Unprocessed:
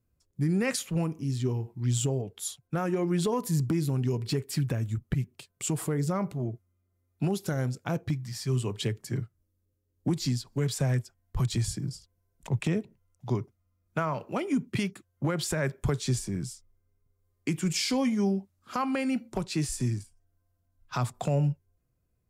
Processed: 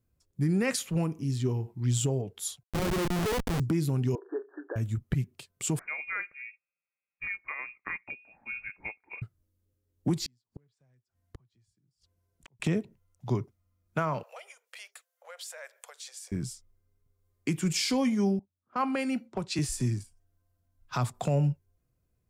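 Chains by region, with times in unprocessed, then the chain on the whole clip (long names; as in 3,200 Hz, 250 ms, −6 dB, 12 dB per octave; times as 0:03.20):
0:02.63–0:03.60: mains-hum notches 50/100/150 Hz + comb filter 2.3 ms, depth 47% + comparator with hysteresis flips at −27 dBFS
0:04.15–0:04.76: linear-phase brick-wall band-pass 290–1,800 Hz + double-tracking delay 30 ms −12.5 dB
0:05.79–0:09.22: high-pass filter 540 Hz 6 dB per octave + voice inversion scrambler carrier 2,600 Hz + expander for the loud parts, over −49 dBFS
0:10.26–0:12.60: high-pass filter 48 Hz + gate with flip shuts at −32 dBFS, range −41 dB + treble cut that deepens with the level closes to 2,100 Hz, closed at −48 dBFS
0:14.23–0:16.32: high-shelf EQ 2,900 Hz +8.5 dB + downward compressor 3 to 1, threshold −41 dBFS + Chebyshev high-pass with heavy ripple 480 Hz, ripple 3 dB
0:18.39–0:19.59: low-pass that shuts in the quiet parts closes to 690 Hz, open at −28 dBFS + high-pass filter 180 Hz 6 dB per octave + multiband upward and downward expander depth 70%
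whole clip: no processing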